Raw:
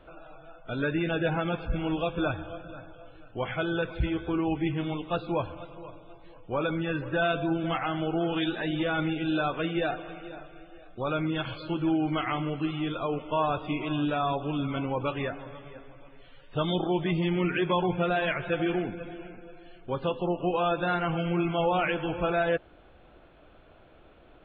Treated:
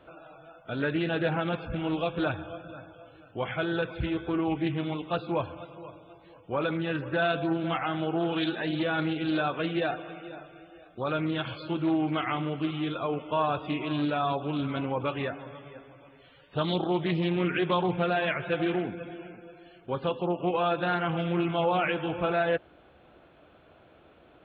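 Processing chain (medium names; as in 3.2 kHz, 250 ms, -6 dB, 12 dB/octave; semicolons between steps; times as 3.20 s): high-pass 82 Hz 12 dB/octave; loudspeaker Doppler distortion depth 0.2 ms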